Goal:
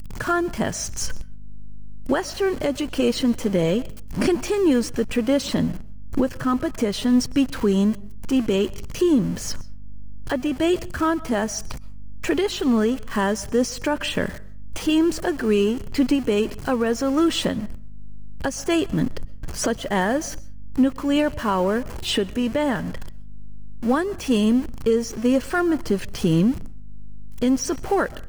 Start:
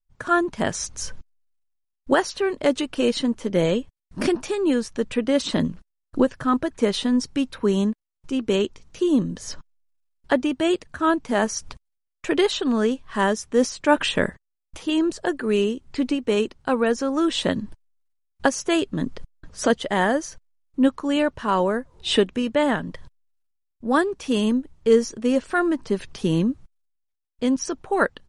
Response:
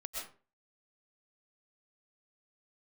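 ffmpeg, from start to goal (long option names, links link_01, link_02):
-filter_complex "[0:a]aeval=exprs='val(0)+0.5*0.0251*sgn(val(0))':channel_layout=same,asplit=2[link_01][link_02];[1:a]atrim=start_sample=2205[link_03];[link_02][link_03]afir=irnorm=-1:irlink=0,volume=-20dB[link_04];[link_01][link_04]amix=inputs=2:normalize=0,alimiter=limit=-13.5dB:level=0:latency=1:release=455,lowshelf=frequency=190:gain=5,aeval=exprs='val(0)+0.00708*(sin(2*PI*50*n/s)+sin(2*PI*2*50*n/s)/2+sin(2*PI*3*50*n/s)/3+sin(2*PI*4*50*n/s)/4+sin(2*PI*5*50*n/s)/5)':channel_layout=same,bandreject=frequency=3700:width=10,volume=1.5dB"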